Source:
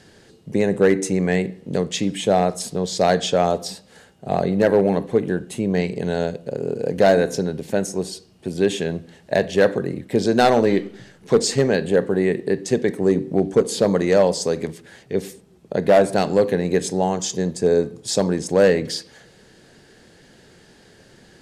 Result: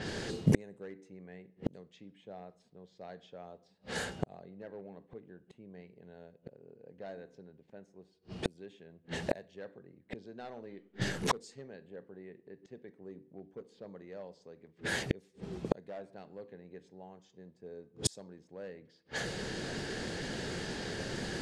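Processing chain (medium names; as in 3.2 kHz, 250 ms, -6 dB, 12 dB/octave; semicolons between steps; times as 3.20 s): inverted gate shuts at -26 dBFS, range -42 dB; level-controlled noise filter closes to 2.3 kHz, open at -42.5 dBFS; trim +11.5 dB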